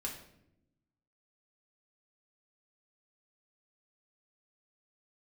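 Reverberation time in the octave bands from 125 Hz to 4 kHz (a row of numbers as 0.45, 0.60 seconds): 1.4, 1.3, 0.95, 0.65, 0.65, 0.55 seconds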